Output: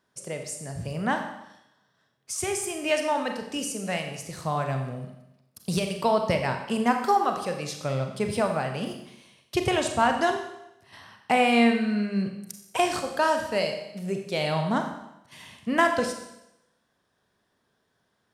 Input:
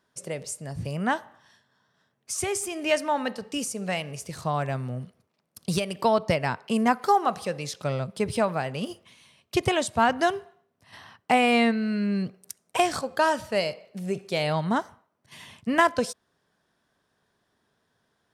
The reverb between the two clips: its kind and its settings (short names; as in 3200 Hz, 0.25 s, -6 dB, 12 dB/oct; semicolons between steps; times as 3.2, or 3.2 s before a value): Schroeder reverb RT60 0.86 s, combs from 30 ms, DRR 4.5 dB; gain -1.5 dB